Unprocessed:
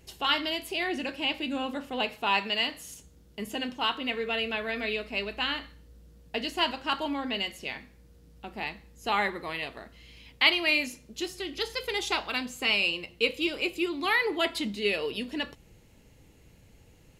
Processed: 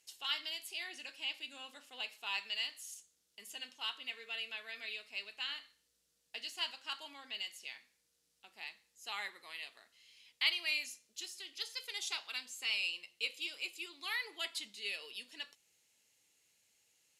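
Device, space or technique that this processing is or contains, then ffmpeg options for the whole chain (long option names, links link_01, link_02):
piezo pickup straight into a mixer: -af "lowpass=8900,aderivative,volume=-1.5dB"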